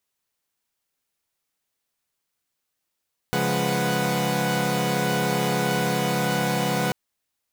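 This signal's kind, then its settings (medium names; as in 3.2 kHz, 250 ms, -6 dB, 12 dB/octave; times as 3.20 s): chord C#3/F3/G#3/B4/F#5 saw, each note -25.5 dBFS 3.59 s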